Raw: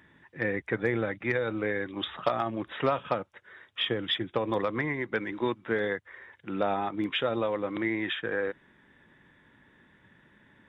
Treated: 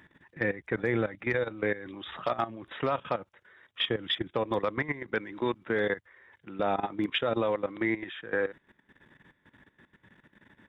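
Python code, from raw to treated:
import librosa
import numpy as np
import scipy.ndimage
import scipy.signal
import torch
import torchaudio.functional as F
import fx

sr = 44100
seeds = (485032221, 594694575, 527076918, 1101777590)

y = fx.level_steps(x, sr, step_db=15)
y = y * 10.0 ** (3.0 / 20.0)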